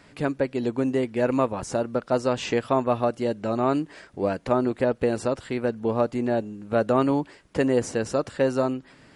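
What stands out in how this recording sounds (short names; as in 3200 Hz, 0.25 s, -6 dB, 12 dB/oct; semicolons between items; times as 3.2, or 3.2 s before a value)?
noise floor -54 dBFS; spectral tilt -4.5 dB/oct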